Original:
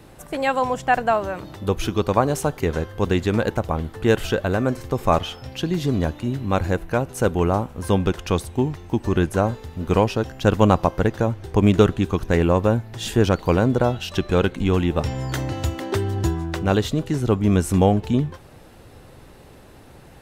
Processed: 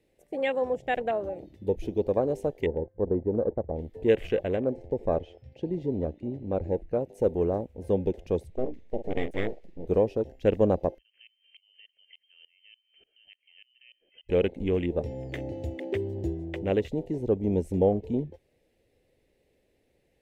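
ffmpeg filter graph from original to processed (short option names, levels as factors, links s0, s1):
-filter_complex "[0:a]asettb=1/sr,asplit=3[s0][s1][s2];[s0]atrim=end=2.664[s3];[s1]atrim=start=2.66:end=3.76,asetpts=PTS-STARTPTS,afade=t=in:d=0.004:c=qsin,afade=t=out:st=1.096:d=0.004:c=qsin,lowpass=f=1300:w=0.5412,lowpass=f=1300:w=1.3066,agate=range=0.0224:threshold=0.0224:ratio=3:release=100:detection=peak,acompressor=mode=upward:threshold=0.0178:ratio=2.5:attack=3.2:release=140:knee=2.83:detection=peak[s4];[s2]atrim=start=3.756[s5];[s3][s4]acrossfade=d=0.004:c1=hsin:c2=qsin[s6];[s6][s5]acrossfade=d=0.004:c1=qsin:c2=hsin,asettb=1/sr,asplit=3[s7][s8][s9];[s7]atrim=end=4.564[s10];[s8]atrim=start=4.56:end=6.99,asetpts=PTS-STARTPTS,afade=t=in:d=0.004:c=qsin,afade=t=out:st=2.426:d=0.004:c=qsin,lowpass=10000,highshelf=f=3900:g=-10[s11];[s9]atrim=start=6.986[s12];[s10][s11]acrossfade=d=0.004:c1=hsin:c2=qsin[s13];[s13][s12]acrossfade=d=0.004:c1=qsin:c2=hsin,asettb=1/sr,asplit=3[s14][s15][s16];[s14]atrim=end=8.504[s17];[s15]atrim=start=8.5:end=9.86,asetpts=PTS-STARTPTS,afade=t=in:d=0.004:c=qsin,afade=t=out:st=1.356:d=0.004:c=qsin,highshelf=f=8400:g=-10.5,asplit=2[s18][s19];[s19]adelay=47,volume=0.316[s20];[s18][s20]amix=inputs=2:normalize=0,atrim=end_sample=59976,aeval=exprs='abs(val(0))':c=same[s21];[s16]atrim=start=9.856[s22];[s17][s21]acrossfade=d=0.004:c1=hsin:c2=qsin[s23];[s23][s22]acrossfade=d=0.004:c1=qsin:c2=hsin,asettb=1/sr,asplit=3[s24][s25][s26];[s24]atrim=end=10.984[s27];[s25]atrim=start=10.98:end=14.29,asetpts=PTS-STARTPTS,afade=t=in:d=0.004:c=qsin,afade=t=out:st=3.306:d=0.004:c=qsin,acompressor=threshold=0.0631:ratio=10:attack=3.2:release=140:knee=1:detection=peak,lowpass=f=2700:t=q:w=0.5098,lowpass=f=2700:t=q:w=0.6013,lowpass=f=2700:t=q:w=0.9,lowpass=f=2700:t=q:w=2.563,afreqshift=-3200,aeval=exprs='val(0)*pow(10,-24*if(lt(mod(-3.4*n/s,1),2*abs(-3.4)/1000),1-mod(-3.4*n/s,1)/(2*abs(-3.4)/1000),(mod(-3.4*n/s,1)-2*abs(-3.4)/1000)/(1-2*abs(-3.4)/1000))/20)':c=same[s28];[s26]atrim=start=14.286[s29];[s27][s28]acrossfade=d=0.004:c1=hsin:c2=qsin[s30];[s30][s29]acrossfade=d=0.004:c1=qsin:c2=hsin,equalizer=f=125:t=o:w=1:g=-5,equalizer=f=500:t=o:w=1:g=9,equalizer=f=1000:t=o:w=1:g=-9,equalizer=f=2000:t=o:w=1:g=12,afwtdn=0.0631,equalizer=f=1400:t=o:w=0.83:g=-13.5,volume=0.376"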